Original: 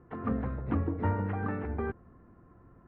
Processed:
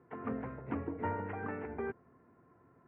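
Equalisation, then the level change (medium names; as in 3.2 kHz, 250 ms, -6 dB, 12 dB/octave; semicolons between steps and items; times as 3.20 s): cabinet simulation 180–2500 Hz, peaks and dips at 200 Hz -9 dB, 320 Hz -7 dB, 540 Hz -6 dB, 780 Hz -5 dB, 1.2 kHz -9 dB, 1.7 kHz -5 dB; bass shelf 360 Hz -4.5 dB; +3.0 dB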